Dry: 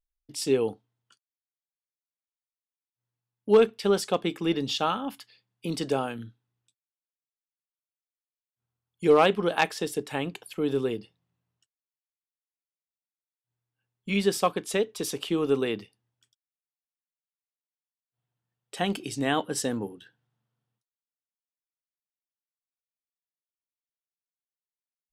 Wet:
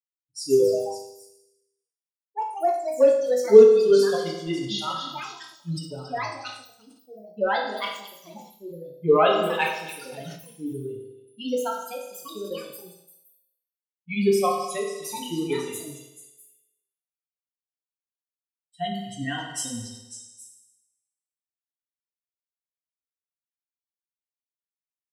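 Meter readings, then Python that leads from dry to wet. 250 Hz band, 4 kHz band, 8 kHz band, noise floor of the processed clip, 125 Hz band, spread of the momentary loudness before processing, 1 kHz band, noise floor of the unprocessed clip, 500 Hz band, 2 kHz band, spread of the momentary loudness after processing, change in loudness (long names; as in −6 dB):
0.0 dB, +1.0 dB, +2.0 dB, below −85 dBFS, +0.5 dB, 15 LU, +3.5 dB, below −85 dBFS, +6.5 dB, +1.5 dB, 20 LU, +3.5 dB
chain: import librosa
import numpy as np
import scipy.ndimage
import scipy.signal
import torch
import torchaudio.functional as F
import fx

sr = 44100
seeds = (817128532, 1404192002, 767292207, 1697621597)

p1 = fx.bin_expand(x, sr, power=3.0)
p2 = p1 + fx.echo_stepped(p1, sr, ms=273, hz=4000.0, octaves=0.7, feedback_pct=70, wet_db=-6.5, dry=0)
p3 = fx.rev_fdn(p2, sr, rt60_s=1.1, lf_ratio=0.85, hf_ratio=0.9, size_ms=14.0, drr_db=-2.5)
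p4 = fx.echo_pitch(p3, sr, ms=203, semitones=4, count=3, db_per_echo=-6.0)
p5 = fx.sustainer(p4, sr, db_per_s=84.0)
y = F.gain(torch.from_numpy(p5), 2.0).numpy()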